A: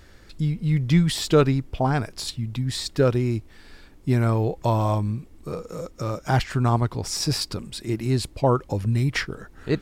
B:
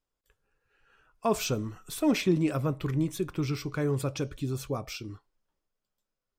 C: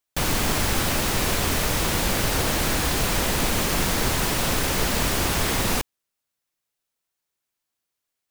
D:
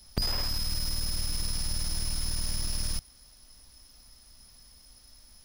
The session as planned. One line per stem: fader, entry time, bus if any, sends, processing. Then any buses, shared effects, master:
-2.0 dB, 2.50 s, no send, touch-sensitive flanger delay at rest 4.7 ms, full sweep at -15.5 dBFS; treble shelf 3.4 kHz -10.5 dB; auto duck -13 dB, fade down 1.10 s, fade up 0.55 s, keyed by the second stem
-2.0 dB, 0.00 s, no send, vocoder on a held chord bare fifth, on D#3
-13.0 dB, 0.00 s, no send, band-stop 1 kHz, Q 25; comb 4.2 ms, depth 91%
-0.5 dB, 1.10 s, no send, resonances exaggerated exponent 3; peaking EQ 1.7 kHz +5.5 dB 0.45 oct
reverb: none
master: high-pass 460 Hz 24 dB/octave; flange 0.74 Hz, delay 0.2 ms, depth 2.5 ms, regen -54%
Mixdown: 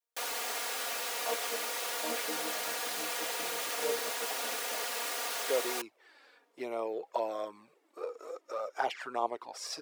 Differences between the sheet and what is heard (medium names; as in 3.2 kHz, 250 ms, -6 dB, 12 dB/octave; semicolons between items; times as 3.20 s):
stem D: muted; master: missing flange 0.74 Hz, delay 0.2 ms, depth 2.5 ms, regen -54%